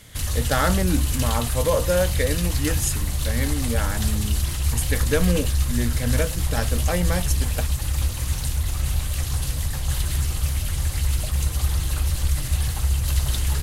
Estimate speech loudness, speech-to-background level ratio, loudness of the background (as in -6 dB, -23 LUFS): -26.5 LUFS, -2.0 dB, -24.5 LUFS